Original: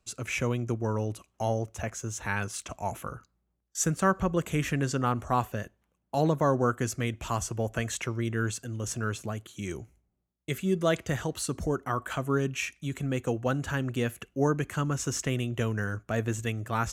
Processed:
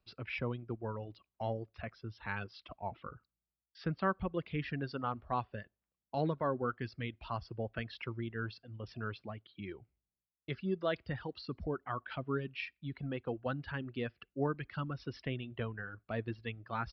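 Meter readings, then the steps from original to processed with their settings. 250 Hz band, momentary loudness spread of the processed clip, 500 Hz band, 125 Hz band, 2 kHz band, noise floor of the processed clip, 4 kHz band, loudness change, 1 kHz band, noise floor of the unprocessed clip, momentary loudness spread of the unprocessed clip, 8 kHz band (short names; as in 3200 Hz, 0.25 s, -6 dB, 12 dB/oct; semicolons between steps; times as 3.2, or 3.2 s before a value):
-9.5 dB, 12 LU, -8.5 dB, -10.5 dB, -8.0 dB, under -85 dBFS, -9.0 dB, -9.5 dB, -8.0 dB, -77 dBFS, 10 LU, under -40 dB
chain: downsampling 11025 Hz; reverb removal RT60 1.8 s; gain -7.5 dB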